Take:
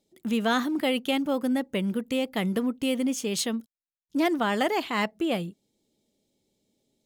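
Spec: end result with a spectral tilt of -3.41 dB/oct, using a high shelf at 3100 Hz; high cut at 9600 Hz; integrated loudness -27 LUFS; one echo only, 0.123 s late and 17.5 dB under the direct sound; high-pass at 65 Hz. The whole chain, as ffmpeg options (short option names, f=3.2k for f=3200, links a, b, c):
-af "highpass=65,lowpass=9.6k,highshelf=f=3.1k:g=7,aecho=1:1:123:0.133,volume=-0.5dB"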